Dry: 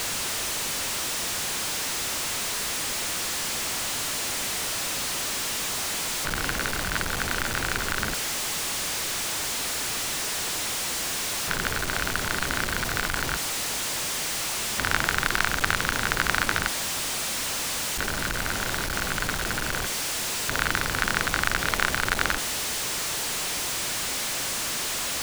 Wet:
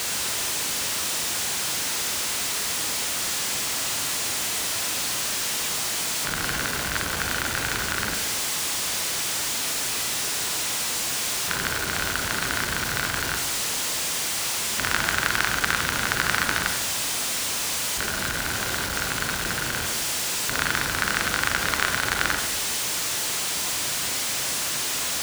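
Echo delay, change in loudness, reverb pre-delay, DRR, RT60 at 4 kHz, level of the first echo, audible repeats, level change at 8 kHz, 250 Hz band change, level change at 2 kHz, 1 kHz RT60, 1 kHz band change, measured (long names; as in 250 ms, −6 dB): no echo audible, +2.0 dB, 30 ms, 4.5 dB, 0.80 s, no echo audible, no echo audible, +3.0 dB, 0.0 dB, +1.0 dB, 0.95 s, +1.0 dB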